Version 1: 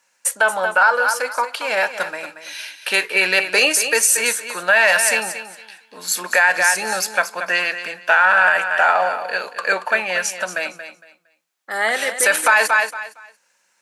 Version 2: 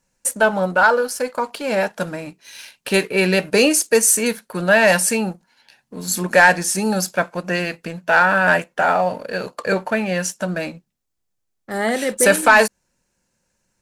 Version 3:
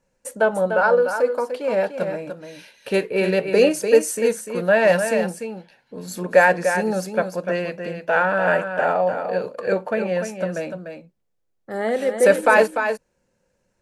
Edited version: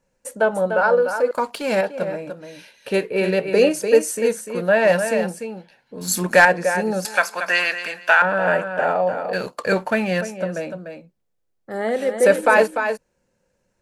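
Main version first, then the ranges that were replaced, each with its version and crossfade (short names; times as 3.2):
3
1.31–1.81 from 2
6.01–6.45 from 2
7.05–8.22 from 1
9.33–10.21 from 2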